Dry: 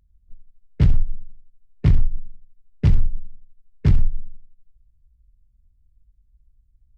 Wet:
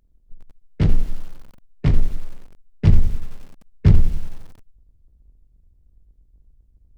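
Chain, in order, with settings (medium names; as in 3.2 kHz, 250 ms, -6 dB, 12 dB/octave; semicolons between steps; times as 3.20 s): octave divider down 1 oct, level -5 dB; peaking EQ 68 Hz -6.5 dB 1.7 oct, from 2.87 s +3.5 dB; hum notches 60/120/180/240/300/360/420/480/540 Hz; bit-crushed delay 90 ms, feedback 55%, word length 6-bit, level -14.5 dB; trim +2 dB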